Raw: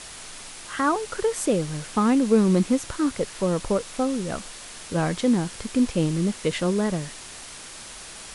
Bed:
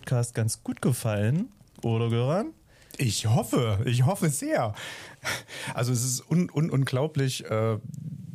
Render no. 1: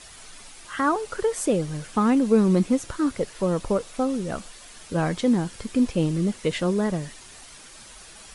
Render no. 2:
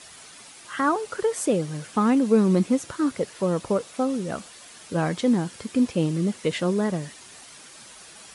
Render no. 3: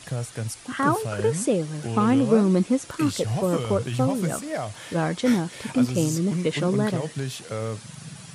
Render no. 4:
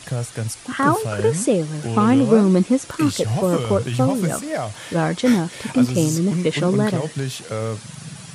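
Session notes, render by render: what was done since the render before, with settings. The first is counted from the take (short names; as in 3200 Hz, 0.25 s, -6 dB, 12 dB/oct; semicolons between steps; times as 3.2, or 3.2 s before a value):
denoiser 8 dB, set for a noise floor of -41 dBFS
HPF 110 Hz 12 dB/oct
add bed -4 dB
gain +4.5 dB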